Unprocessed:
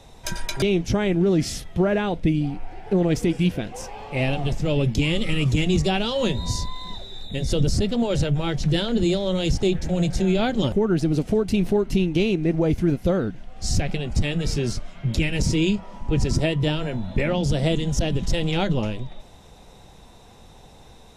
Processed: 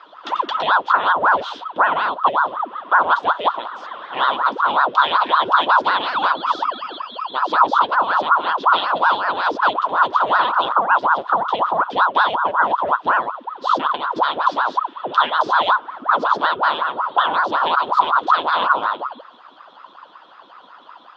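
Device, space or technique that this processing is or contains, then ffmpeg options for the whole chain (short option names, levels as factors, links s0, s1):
voice changer toy: -filter_complex "[0:a]aeval=exprs='val(0)*sin(2*PI*760*n/s+760*0.7/5.4*sin(2*PI*5.4*n/s))':c=same,highpass=420,equalizer=f=430:t=q:w=4:g=-6,equalizer=f=1000:t=q:w=4:g=9,equalizer=f=1400:t=q:w=4:g=7,equalizer=f=2200:t=q:w=4:g=-8,equalizer=f=3400:t=q:w=4:g=10,lowpass=f=3700:w=0.5412,lowpass=f=3700:w=1.3066,asettb=1/sr,asplit=3[s0][s1][s2];[s0]atrim=end=3.344[s3];[s1]atrim=start=3.34:end=3.95,asetpts=PTS-STARTPTS,afade=t=in:d=0.004:c=qsin,afade=t=out:st=0.606:d=0.004:c=qsin,highpass=220[s4];[s2]atrim=start=3.946[s5];[s3][s4]acrossfade=d=0.004:c1=hsin:c2=qsin[s6];[s6][s5]acrossfade=d=0.004:c1=qsin:c2=hsin,volume=1.41"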